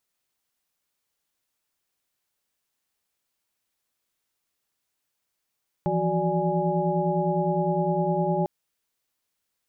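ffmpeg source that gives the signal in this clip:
-f lavfi -i "aevalsrc='0.0398*(sin(2*PI*164.81*t)+sin(2*PI*174.61*t)+sin(2*PI*369.99*t)+sin(2*PI*587.33*t)+sin(2*PI*830.61*t))':d=2.6:s=44100"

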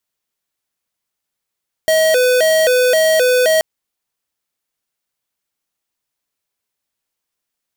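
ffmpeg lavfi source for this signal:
-f lavfi -i "aevalsrc='0.237*(2*lt(mod((568.5*t+67.5/1.9*(0.5-abs(mod(1.9*t,1)-0.5))),1),0.5)-1)':d=1.73:s=44100"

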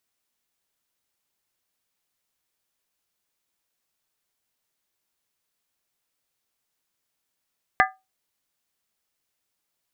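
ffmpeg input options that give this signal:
-f lavfi -i "aevalsrc='0.178*pow(10,-3*t/0.23)*sin(2*PI*760*t)+0.168*pow(10,-3*t/0.182)*sin(2*PI*1211.4*t)+0.158*pow(10,-3*t/0.157)*sin(2*PI*1623.4*t)+0.15*pow(10,-3*t/0.152)*sin(2*PI*1745*t)+0.141*pow(10,-3*t/0.141)*sin(2*PI*2016.3*t)':d=0.63:s=44100"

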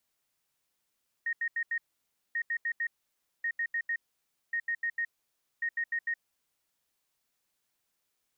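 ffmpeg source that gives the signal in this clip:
-f lavfi -i "aevalsrc='0.0398*sin(2*PI*1860*t)*clip(min(mod(mod(t,1.09),0.15),0.07-mod(mod(t,1.09),0.15))/0.005,0,1)*lt(mod(t,1.09),0.6)':d=5.45:s=44100"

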